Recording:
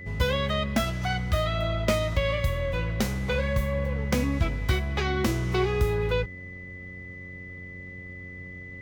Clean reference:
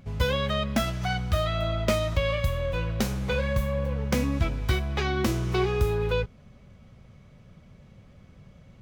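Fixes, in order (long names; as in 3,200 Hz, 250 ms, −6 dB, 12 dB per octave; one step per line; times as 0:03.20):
hum removal 90.9 Hz, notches 6
notch filter 2,000 Hz, Q 30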